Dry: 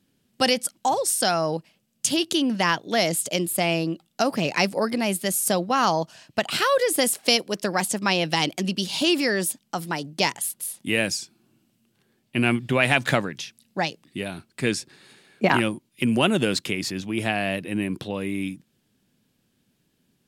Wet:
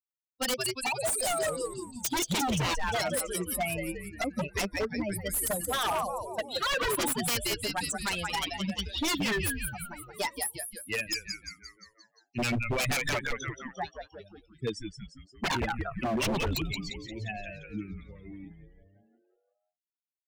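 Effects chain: expander on every frequency bin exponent 3; 1.43–2.51 s: waveshaping leveller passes 1; frequency-shifting echo 175 ms, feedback 55%, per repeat -130 Hz, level -7.5 dB; wavefolder -27 dBFS; trim +3.5 dB

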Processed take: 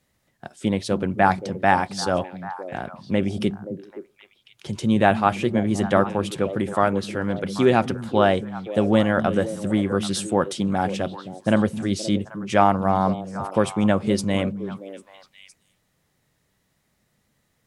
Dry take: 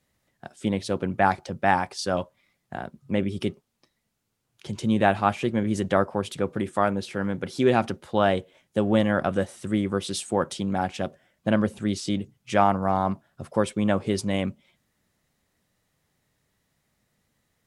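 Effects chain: repeats whose band climbs or falls 262 ms, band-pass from 160 Hz, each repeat 1.4 oct, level -6 dB; trim +3 dB

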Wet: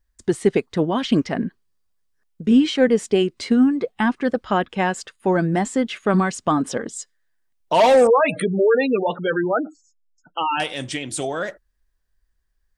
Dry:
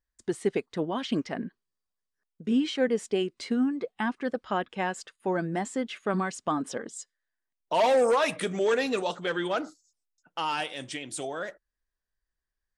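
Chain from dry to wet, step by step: 8.07–10.60 s: spectral gate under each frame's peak -15 dB strong; bass shelf 130 Hz +10.5 dB; trim +8 dB

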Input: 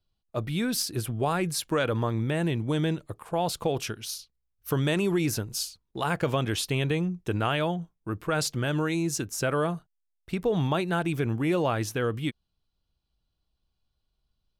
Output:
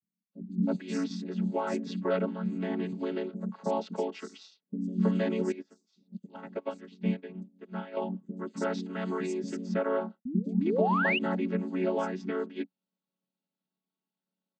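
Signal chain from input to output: vocoder on a held chord minor triad, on F#3; 1.98–2.21 s: time-frequency box 210–1200 Hz -8 dB; band-stop 750 Hz, Q 20; 10.25–10.87 s: painted sound rise 230–3000 Hz -28 dBFS; three bands offset in time lows, highs, mids 150/320 ms, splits 260/5500 Hz; 5.52–7.97 s: upward expansion 2.5:1, over -39 dBFS

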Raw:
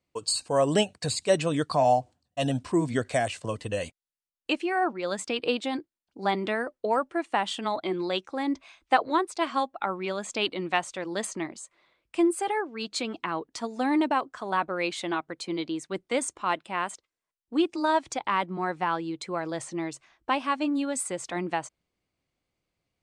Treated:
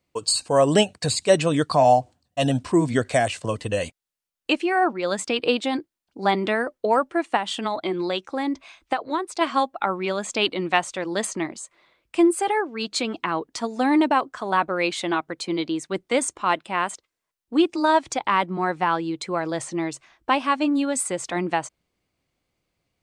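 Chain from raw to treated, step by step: 7.36–9.41 s: compression 6:1, threshold -27 dBFS, peak gain reduction 11.5 dB; trim +5.5 dB

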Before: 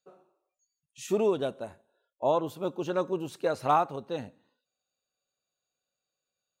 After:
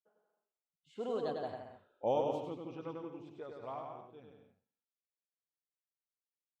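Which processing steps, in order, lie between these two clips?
Doppler pass-by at 1.72 s, 40 m/s, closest 3.8 m; bouncing-ball echo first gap 100 ms, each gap 0.75×, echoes 5; level-controlled noise filter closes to 2.8 kHz, open at -28.5 dBFS; trim +5 dB

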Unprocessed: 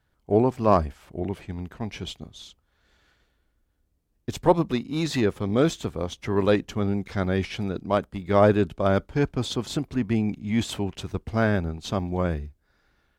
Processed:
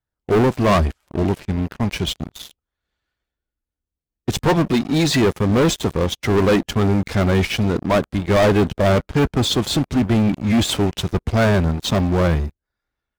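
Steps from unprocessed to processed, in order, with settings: coarse spectral quantiser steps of 15 dB; waveshaping leveller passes 5; trim -5.5 dB

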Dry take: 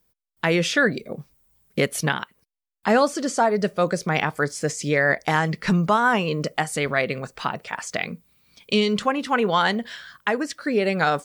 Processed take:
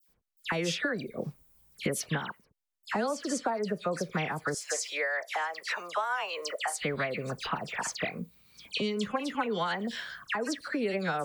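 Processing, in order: 4.46–6.73 s: high-pass 580 Hz 24 dB/octave; compression 6:1, threshold -28 dBFS, peak gain reduction 13.5 dB; phase dispersion lows, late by 85 ms, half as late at 2.4 kHz

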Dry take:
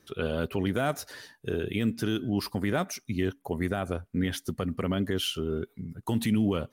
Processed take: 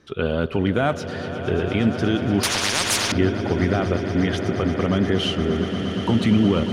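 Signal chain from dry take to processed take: distance through air 110 m; on a send: echo with a slow build-up 118 ms, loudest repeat 8, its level -14 dB; 2.43–3.12 s: on the sum: spectrum-flattening compressor 10:1; trim +7.5 dB

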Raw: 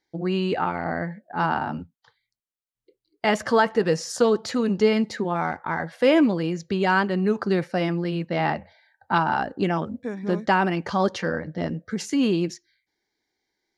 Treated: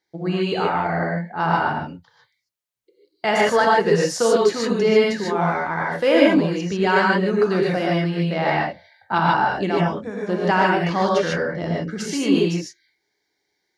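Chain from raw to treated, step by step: high-pass 76 Hz; peaking EQ 250 Hz -8.5 dB 0.35 oct; gated-style reverb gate 170 ms rising, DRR -3.5 dB

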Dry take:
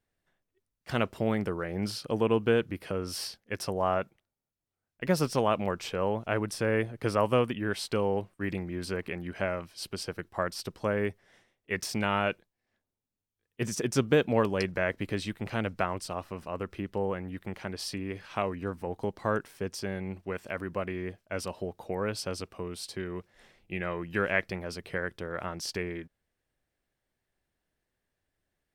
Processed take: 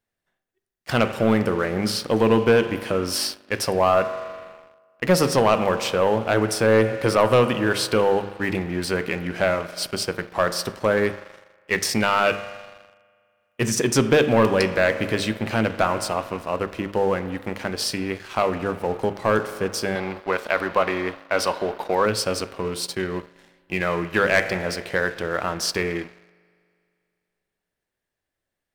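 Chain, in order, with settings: bass shelf 150 Hz -5.5 dB; hum notches 50/100/150/200/250/300/350/400/450 Hz; feedback comb 110 Hz, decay 0.42 s, harmonics all, mix 40%; spring tank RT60 2.4 s, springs 40 ms, chirp 75 ms, DRR 12 dB; waveshaping leveller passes 2; 19.95–22.06 s: ten-band graphic EQ 125 Hz -10 dB, 1 kHz +7 dB, 4 kHz +6 dB, 8 kHz -3 dB; trim +7.5 dB

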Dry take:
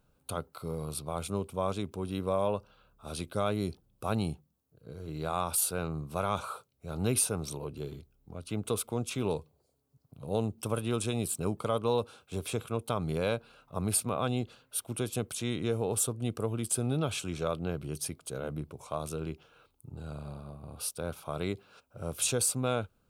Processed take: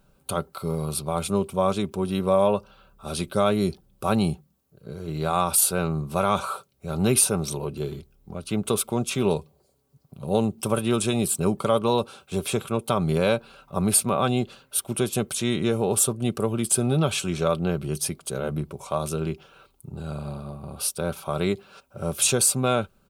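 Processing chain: comb 5.2 ms, depth 42%; trim +8 dB

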